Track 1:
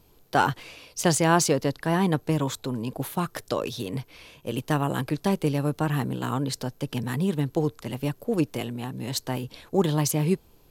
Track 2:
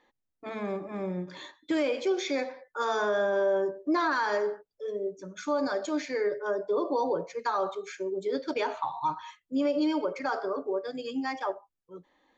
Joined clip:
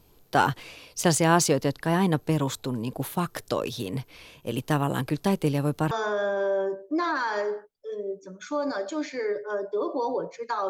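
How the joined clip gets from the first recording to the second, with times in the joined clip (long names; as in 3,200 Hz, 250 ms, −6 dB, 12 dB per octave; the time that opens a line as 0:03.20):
track 1
0:05.91: continue with track 2 from 0:02.87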